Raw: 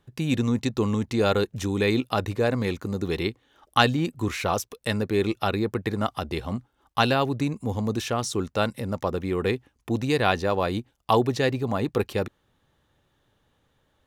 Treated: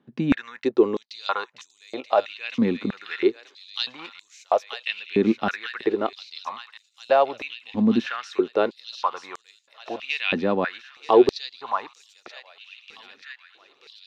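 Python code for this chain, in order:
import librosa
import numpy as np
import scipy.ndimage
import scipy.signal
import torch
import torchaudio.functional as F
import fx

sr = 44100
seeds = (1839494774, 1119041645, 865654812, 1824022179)

y = fx.air_absorb(x, sr, metres=230.0)
y = fx.echo_wet_highpass(y, sr, ms=932, feedback_pct=65, hz=3200.0, wet_db=-4)
y = fx.filter_held_highpass(y, sr, hz=3.1, low_hz=230.0, high_hz=7100.0)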